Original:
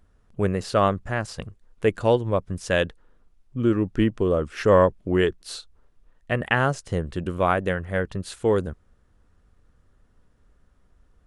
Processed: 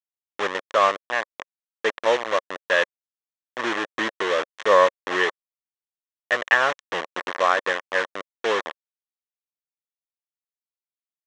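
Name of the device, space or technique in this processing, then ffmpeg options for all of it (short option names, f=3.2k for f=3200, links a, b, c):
hand-held game console: -af "acrusher=bits=3:mix=0:aa=0.000001,highpass=480,equalizer=f=550:t=q:w=4:g=4,equalizer=f=1.1k:t=q:w=4:g=7,equalizer=f=1.8k:t=q:w=4:g=9,equalizer=f=3.3k:t=q:w=4:g=4,equalizer=f=4.7k:t=q:w=4:g=-8,lowpass=f=5.9k:w=0.5412,lowpass=f=5.9k:w=1.3066,volume=-1.5dB"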